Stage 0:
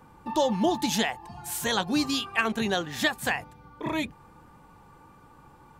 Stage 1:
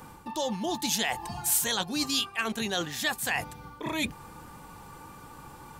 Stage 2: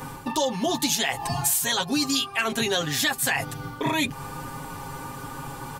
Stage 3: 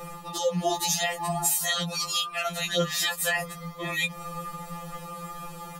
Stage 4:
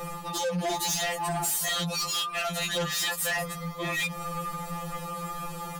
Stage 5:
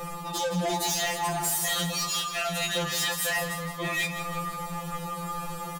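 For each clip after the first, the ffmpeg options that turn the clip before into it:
ffmpeg -i in.wav -af "areverse,acompressor=threshold=-35dB:ratio=6,areverse,highshelf=frequency=3300:gain=11,volume=5.5dB" out.wav
ffmpeg -i in.wav -af "aecho=1:1:7.4:0.82,acompressor=threshold=-30dB:ratio=6,volume=9dB" out.wav
ffmpeg -i in.wav -af "afftfilt=real='re*2.83*eq(mod(b,8),0)':imag='im*2.83*eq(mod(b,8),0)':win_size=2048:overlap=0.75" out.wav
ffmpeg -i in.wav -af "asoftclip=type=tanh:threshold=-29.5dB,volume=4dB" out.wav
ffmpeg -i in.wav -filter_complex "[0:a]asplit=2[link_01][link_02];[link_02]adelay=28,volume=-10.5dB[link_03];[link_01][link_03]amix=inputs=2:normalize=0,aecho=1:1:165|330|495|660|825|990:0.316|0.164|0.0855|0.0445|0.0231|0.012" out.wav

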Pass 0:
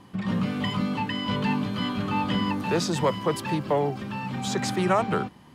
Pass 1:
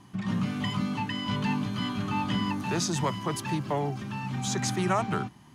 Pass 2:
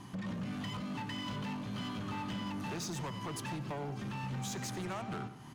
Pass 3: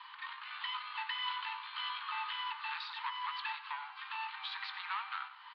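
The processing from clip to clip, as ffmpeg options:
ffmpeg -i in.wav -af "equalizer=frequency=125:width_type=o:width=0.33:gain=6,equalizer=frequency=500:width_type=o:width=0.33:gain=-11,equalizer=frequency=6300:width_type=o:width=0.33:gain=8,equalizer=frequency=10000:width_type=o:width=0.33:gain=5,volume=-3dB" out.wav
ffmpeg -i in.wav -filter_complex "[0:a]acompressor=threshold=-40dB:ratio=4,asoftclip=type=hard:threshold=-39.5dB,asplit=2[link_01][link_02];[link_02]adelay=91,lowpass=frequency=4900:poles=1,volume=-12.5dB,asplit=2[link_03][link_04];[link_04]adelay=91,lowpass=frequency=4900:poles=1,volume=0.48,asplit=2[link_05][link_06];[link_06]adelay=91,lowpass=frequency=4900:poles=1,volume=0.48,asplit=2[link_07][link_08];[link_08]adelay=91,lowpass=frequency=4900:poles=1,volume=0.48,asplit=2[link_09][link_10];[link_10]adelay=91,lowpass=frequency=4900:poles=1,volume=0.48[link_11];[link_01][link_03][link_05][link_07][link_09][link_11]amix=inputs=6:normalize=0,volume=3.5dB" out.wav
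ffmpeg -i in.wav -filter_complex "[0:a]asuperpass=centerf=2000:order=20:qfactor=0.57,asplit=2[link_01][link_02];[link_02]adelay=20,volume=-13dB[link_03];[link_01][link_03]amix=inputs=2:normalize=0,volume=6dB" out.wav

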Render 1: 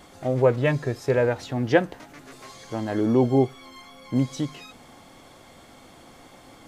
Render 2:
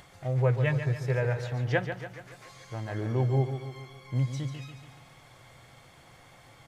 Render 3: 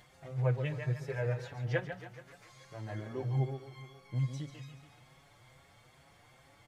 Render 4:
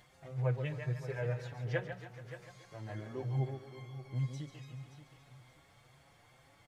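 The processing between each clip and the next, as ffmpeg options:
ffmpeg -i in.wav -af "acompressor=mode=upward:threshold=-42dB:ratio=2.5,equalizer=frequency=125:width_type=o:width=1:gain=12,equalizer=frequency=250:width_type=o:width=1:gain=-11,equalizer=frequency=2000:width_type=o:width=1:gain=5,aecho=1:1:142|284|426|568|710|852:0.355|0.188|0.0997|0.0528|0.028|0.0148,volume=-8.5dB" out.wav
ffmpeg -i in.wav -filter_complex "[0:a]asplit=2[link_01][link_02];[link_02]adelay=6.3,afreqshift=2.4[link_03];[link_01][link_03]amix=inputs=2:normalize=1,volume=-4dB" out.wav
ffmpeg -i in.wav -af "aecho=1:1:576|1152|1728:0.224|0.0627|0.0176,volume=-2.5dB" out.wav

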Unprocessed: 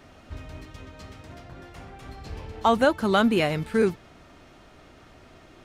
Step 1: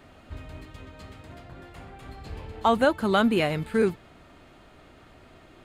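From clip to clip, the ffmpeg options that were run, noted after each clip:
ffmpeg -i in.wav -af "equalizer=frequency=5700:width_type=o:width=0.28:gain=-9.5,volume=-1dB" out.wav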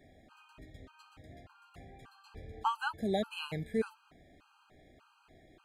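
ffmpeg -i in.wav -af "afftfilt=real='re*gt(sin(2*PI*1.7*pts/sr)*(1-2*mod(floor(b*sr/1024/810),2)),0)':imag='im*gt(sin(2*PI*1.7*pts/sr)*(1-2*mod(floor(b*sr/1024/810),2)),0)':win_size=1024:overlap=0.75,volume=-7.5dB" out.wav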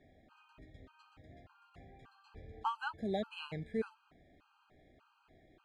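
ffmpeg -i in.wav -af "adynamicsmooth=sensitivity=2.5:basefreq=5700,volume=-4dB" out.wav

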